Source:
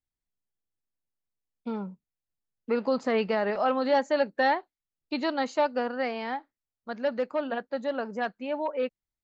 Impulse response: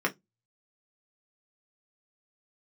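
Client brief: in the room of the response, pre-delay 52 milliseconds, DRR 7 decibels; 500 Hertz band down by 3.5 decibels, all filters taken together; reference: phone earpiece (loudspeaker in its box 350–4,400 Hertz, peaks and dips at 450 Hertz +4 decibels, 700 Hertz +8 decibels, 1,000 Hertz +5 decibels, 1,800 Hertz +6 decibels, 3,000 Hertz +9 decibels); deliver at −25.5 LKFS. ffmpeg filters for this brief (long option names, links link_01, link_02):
-filter_complex "[0:a]equalizer=frequency=500:width_type=o:gain=-8.5,asplit=2[link_01][link_02];[1:a]atrim=start_sample=2205,adelay=52[link_03];[link_02][link_03]afir=irnorm=-1:irlink=0,volume=-17dB[link_04];[link_01][link_04]amix=inputs=2:normalize=0,highpass=350,equalizer=frequency=450:width_type=q:width=4:gain=4,equalizer=frequency=700:width_type=q:width=4:gain=8,equalizer=frequency=1000:width_type=q:width=4:gain=5,equalizer=frequency=1800:width_type=q:width=4:gain=6,equalizer=frequency=3000:width_type=q:width=4:gain=9,lowpass=frequency=4400:width=0.5412,lowpass=frequency=4400:width=1.3066,volume=2.5dB"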